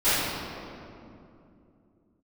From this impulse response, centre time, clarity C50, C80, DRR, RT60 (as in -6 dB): 0.165 s, -5.0 dB, -1.5 dB, -19.0 dB, 2.7 s